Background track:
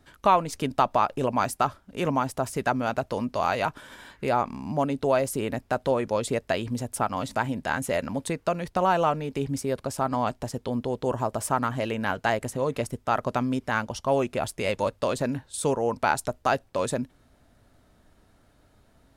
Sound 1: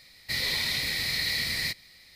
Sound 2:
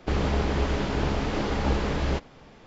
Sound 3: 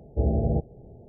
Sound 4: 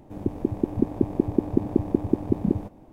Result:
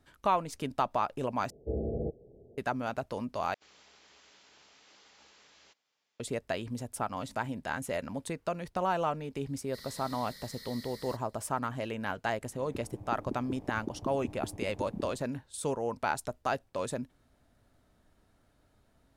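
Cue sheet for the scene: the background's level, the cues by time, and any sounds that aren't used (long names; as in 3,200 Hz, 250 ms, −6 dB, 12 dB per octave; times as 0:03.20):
background track −7.5 dB
0:01.50: overwrite with 3 −13 dB + drawn EQ curve 150 Hz 0 dB, 270 Hz +5 dB, 460 Hz +11 dB, 1,000 Hz −8 dB
0:03.54: overwrite with 2 −15 dB + first difference
0:09.44: mix in 1 −15.5 dB + phaser with its sweep stopped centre 500 Hz, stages 8
0:12.49: mix in 4 −16 dB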